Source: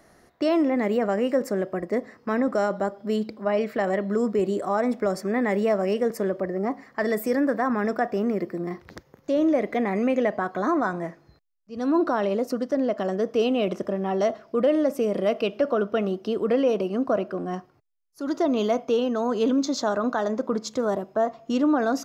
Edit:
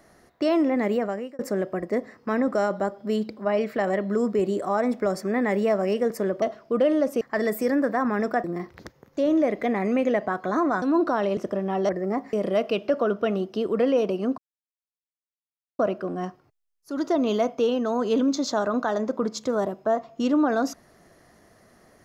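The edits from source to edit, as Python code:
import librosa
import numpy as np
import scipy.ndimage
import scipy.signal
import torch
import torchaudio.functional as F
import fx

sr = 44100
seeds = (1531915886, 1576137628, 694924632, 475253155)

y = fx.edit(x, sr, fx.fade_out_span(start_s=0.92, length_s=0.47),
    fx.swap(start_s=6.42, length_s=0.44, other_s=14.25, other_length_s=0.79),
    fx.cut(start_s=8.09, length_s=0.46),
    fx.cut(start_s=10.93, length_s=0.89),
    fx.cut(start_s=12.37, length_s=1.36),
    fx.insert_silence(at_s=17.09, length_s=1.41), tone=tone)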